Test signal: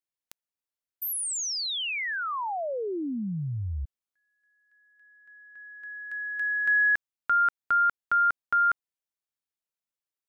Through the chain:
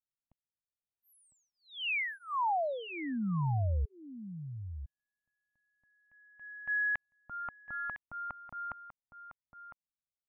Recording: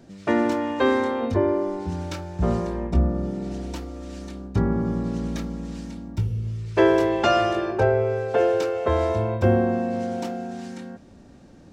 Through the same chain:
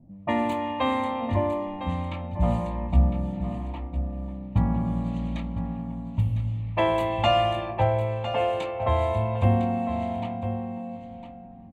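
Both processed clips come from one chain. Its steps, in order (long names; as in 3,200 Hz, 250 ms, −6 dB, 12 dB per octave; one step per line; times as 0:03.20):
phaser with its sweep stopped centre 1,500 Hz, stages 6
low-pass that shuts in the quiet parts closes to 330 Hz, open at −23.5 dBFS
single-tap delay 1,005 ms −11 dB
level +1.5 dB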